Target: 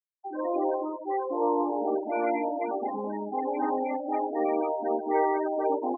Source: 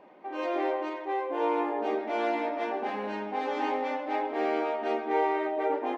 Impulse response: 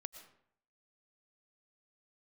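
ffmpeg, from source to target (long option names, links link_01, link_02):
-af "equalizer=frequency=260:width=3:gain=4,afftfilt=real='re*gte(hypot(re,im),0.0562)':imag='im*gte(hypot(re,im),0.0562)':win_size=1024:overlap=0.75,volume=1.5dB"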